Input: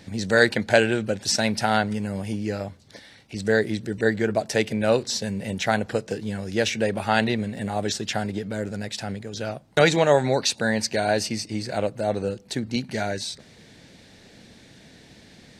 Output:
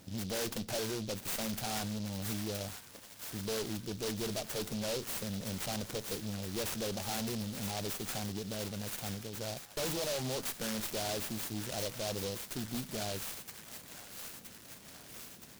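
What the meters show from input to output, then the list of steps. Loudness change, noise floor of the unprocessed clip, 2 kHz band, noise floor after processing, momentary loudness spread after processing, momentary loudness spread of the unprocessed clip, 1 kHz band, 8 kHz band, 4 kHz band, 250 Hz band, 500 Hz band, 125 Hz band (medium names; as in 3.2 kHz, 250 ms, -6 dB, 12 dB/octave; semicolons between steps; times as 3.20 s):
-13.0 dB, -51 dBFS, -19.0 dB, -54 dBFS, 10 LU, 11 LU, -16.0 dB, -6.5 dB, -10.0 dB, -13.0 dB, -16.0 dB, -11.5 dB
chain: valve stage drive 27 dB, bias 0.5; feedback echo behind a high-pass 970 ms, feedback 69%, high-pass 1.9 kHz, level -4 dB; delay time shaken by noise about 4.2 kHz, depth 0.15 ms; trim -6 dB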